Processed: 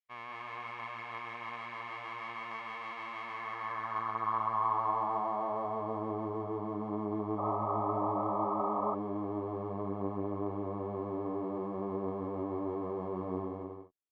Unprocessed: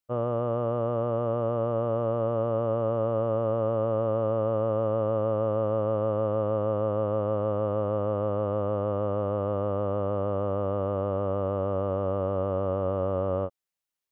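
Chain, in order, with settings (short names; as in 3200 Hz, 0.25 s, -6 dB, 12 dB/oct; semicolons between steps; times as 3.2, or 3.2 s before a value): minimum comb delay 0.95 ms; on a send: bouncing-ball echo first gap 0.18 s, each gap 0.6×, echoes 5; on the sum: band-pass sweep 2300 Hz -> 380 Hz, 3.24–6.45; painted sound noise, 7.38–8.95, 540–1300 Hz -34 dBFS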